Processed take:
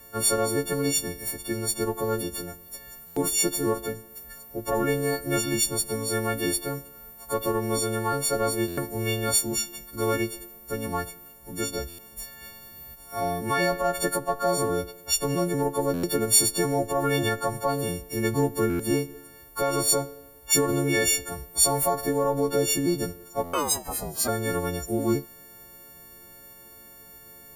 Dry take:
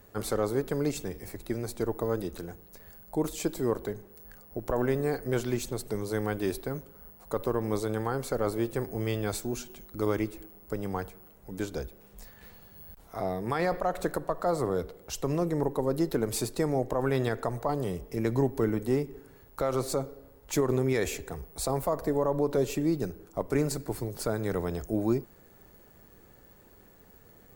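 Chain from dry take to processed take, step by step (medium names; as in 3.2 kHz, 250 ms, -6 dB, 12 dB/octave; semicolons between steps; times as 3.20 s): partials quantised in pitch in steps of 4 st; 23.46–24.27 s: ring modulator 1 kHz -> 190 Hz; buffer glitch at 3.06/8.67/11.88/15.93/18.69/23.43 s, samples 512, times 8; trim +2.5 dB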